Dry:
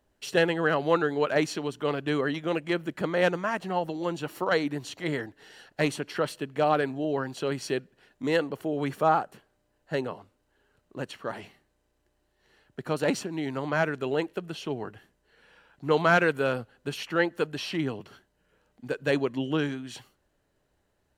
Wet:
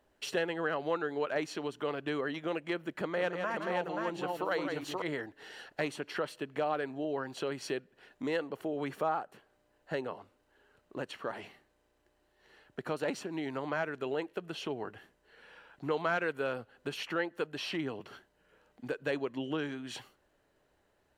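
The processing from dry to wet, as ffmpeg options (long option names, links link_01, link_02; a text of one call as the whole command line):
ffmpeg -i in.wav -filter_complex "[0:a]asettb=1/sr,asplit=3[link_01][link_02][link_03];[link_01]atrim=end=2.934[link_04];[link_02]atrim=start=2.93:end=5.02,asetpts=PTS-STARTPTS,afade=type=in:duration=0.004:curve=qsin,afade=type=out:start_time=2.086:duration=0.004:curve=qsin,aecho=1:1:164|530:0.376|0.631,atrim=end_sample=92169[link_05];[link_03]atrim=start=5.016[link_06];[link_04][link_05]acrossfade=duration=0.004:curve1=hsin:curve2=qsin[link_07];[link_07][link_06]acrossfade=duration=0.004:curve1=qsin:curve2=hsin,bass=frequency=250:gain=-7,treble=frequency=4000:gain=-5,acompressor=threshold=-41dB:ratio=2,volume=3dB" out.wav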